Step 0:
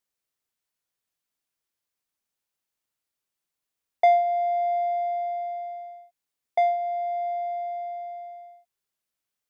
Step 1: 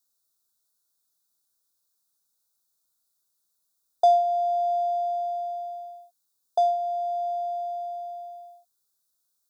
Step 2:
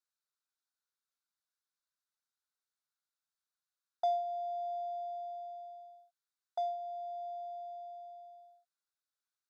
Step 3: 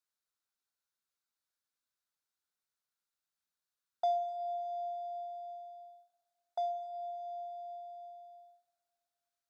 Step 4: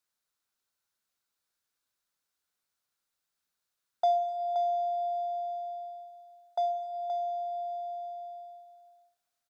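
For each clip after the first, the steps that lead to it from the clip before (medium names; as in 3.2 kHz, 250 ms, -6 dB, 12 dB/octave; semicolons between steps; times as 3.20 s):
elliptic band-stop 1.5–3.7 kHz, stop band 80 dB; treble shelf 3 kHz +12 dB
band-pass filter 1.8 kHz, Q 1.7; trim -1.5 dB
Schroeder reverb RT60 3.6 s, combs from 28 ms, DRR 11.5 dB
delay 524 ms -8.5 dB; trim +5.5 dB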